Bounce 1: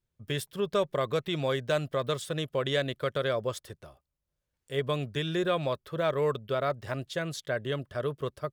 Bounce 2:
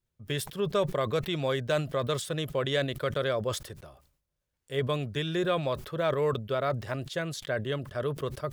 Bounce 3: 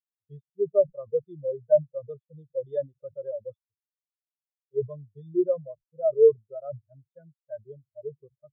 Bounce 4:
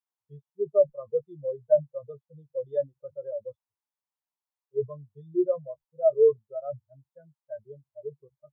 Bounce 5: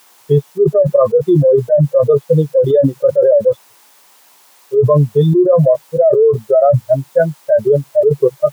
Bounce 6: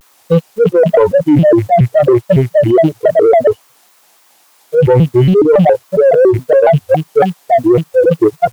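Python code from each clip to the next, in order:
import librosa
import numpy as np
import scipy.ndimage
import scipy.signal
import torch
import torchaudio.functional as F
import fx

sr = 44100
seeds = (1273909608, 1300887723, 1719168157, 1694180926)

y1 = fx.sustainer(x, sr, db_per_s=100.0)
y2 = fx.spectral_expand(y1, sr, expansion=4.0)
y2 = y2 * 10.0 ** (6.5 / 20.0)
y3 = fx.peak_eq(y2, sr, hz=920.0, db=13.5, octaves=0.84)
y3 = fx.doubler(y3, sr, ms=14.0, db=-11)
y3 = y3 * 10.0 ** (-4.0 / 20.0)
y4 = scipy.signal.sosfilt(scipy.signal.butter(2, 270.0, 'highpass', fs=sr, output='sos'), y3)
y4 = fx.env_flatten(y4, sr, amount_pct=100)
y4 = y4 * 10.0 ** (6.5 / 20.0)
y5 = fx.rattle_buzz(y4, sr, strikes_db=-17.0, level_db=-25.0)
y5 = fx.leveller(y5, sr, passes=1)
y5 = fx.vibrato_shape(y5, sr, shape='square', rate_hz=3.6, depth_cents=250.0)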